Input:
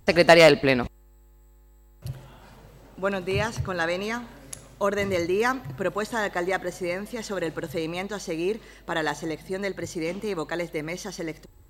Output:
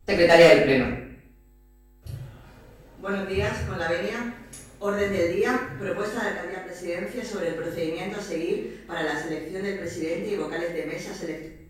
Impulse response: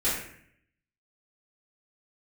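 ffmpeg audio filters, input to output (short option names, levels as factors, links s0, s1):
-filter_complex "[0:a]asettb=1/sr,asplit=3[s0][s1][s2];[s0]atrim=end=6.284[s3];[s1]atrim=start=6.28:end=6.74,asetpts=PTS-STARTPTS,afade=t=in:d=0.004:c=qsin,afade=t=out:st=0.456:d=0.004:c=qsin,acompressor=threshold=0.0316:ratio=5[s4];[s2]atrim=start=6.736[s5];[s3][s4]acrossfade=d=0.004:c1=hsin:c2=qsin[s6];[s6][s5]acrossfade=d=0.004:c1=qsin:c2=hsin[s7];[1:a]atrim=start_sample=2205[s8];[s7][s8]afir=irnorm=-1:irlink=0,volume=0.266"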